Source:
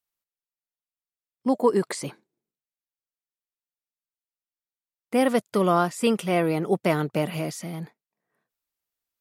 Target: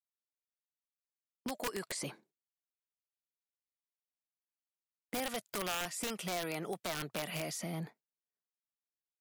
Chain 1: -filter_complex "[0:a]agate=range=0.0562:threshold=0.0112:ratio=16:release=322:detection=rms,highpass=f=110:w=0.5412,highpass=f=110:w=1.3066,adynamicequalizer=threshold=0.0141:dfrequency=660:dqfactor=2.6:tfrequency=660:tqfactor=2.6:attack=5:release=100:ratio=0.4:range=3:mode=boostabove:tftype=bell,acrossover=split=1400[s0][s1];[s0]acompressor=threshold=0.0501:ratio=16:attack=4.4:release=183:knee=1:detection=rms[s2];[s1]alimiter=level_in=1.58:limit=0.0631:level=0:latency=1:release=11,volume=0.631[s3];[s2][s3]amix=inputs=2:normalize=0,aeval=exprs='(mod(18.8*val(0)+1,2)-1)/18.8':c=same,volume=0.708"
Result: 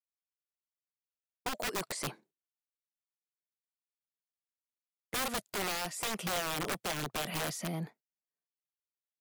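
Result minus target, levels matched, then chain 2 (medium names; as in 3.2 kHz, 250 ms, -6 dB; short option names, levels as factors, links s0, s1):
compression: peak gain reduction -5.5 dB
-filter_complex "[0:a]agate=range=0.0562:threshold=0.0112:ratio=16:release=322:detection=rms,highpass=f=110:w=0.5412,highpass=f=110:w=1.3066,adynamicequalizer=threshold=0.0141:dfrequency=660:dqfactor=2.6:tfrequency=660:tqfactor=2.6:attack=5:release=100:ratio=0.4:range=3:mode=boostabove:tftype=bell,acrossover=split=1400[s0][s1];[s0]acompressor=threshold=0.0251:ratio=16:attack=4.4:release=183:knee=1:detection=rms[s2];[s1]alimiter=level_in=1.58:limit=0.0631:level=0:latency=1:release=11,volume=0.631[s3];[s2][s3]amix=inputs=2:normalize=0,aeval=exprs='(mod(18.8*val(0)+1,2)-1)/18.8':c=same,volume=0.708"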